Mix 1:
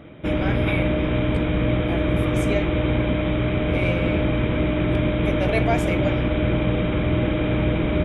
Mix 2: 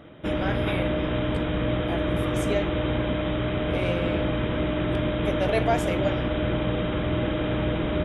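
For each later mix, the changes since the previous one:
background: add low shelf 480 Hz -6 dB; master: add bell 2300 Hz -9.5 dB 0.2 oct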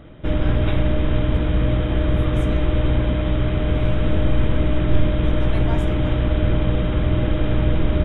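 speech: add ladder high-pass 840 Hz, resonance 55%; master: remove HPF 240 Hz 6 dB/oct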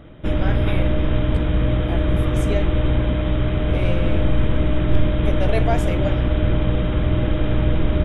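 speech: remove ladder high-pass 840 Hz, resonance 55%

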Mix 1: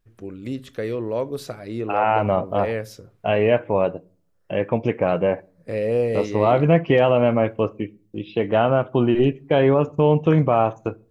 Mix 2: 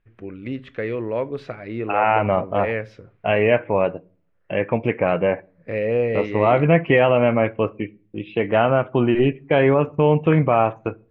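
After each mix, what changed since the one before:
master: add synth low-pass 2300 Hz, resonance Q 2.1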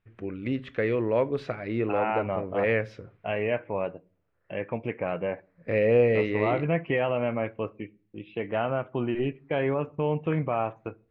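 second voice -10.5 dB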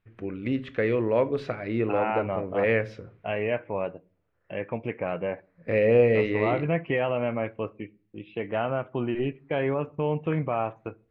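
first voice: send +7.5 dB

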